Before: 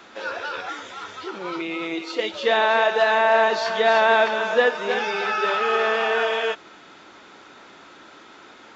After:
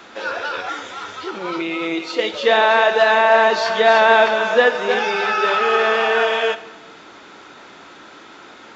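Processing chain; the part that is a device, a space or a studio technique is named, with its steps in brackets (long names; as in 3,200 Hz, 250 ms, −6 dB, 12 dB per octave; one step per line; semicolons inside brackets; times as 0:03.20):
saturated reverb return (on a send at −12 dB: convolution reverb RT60 1.1 s, pre-delay 17 ms + soft clipping −13 dBFS, distortion −15 dB)
on the sum: level +4.5 dB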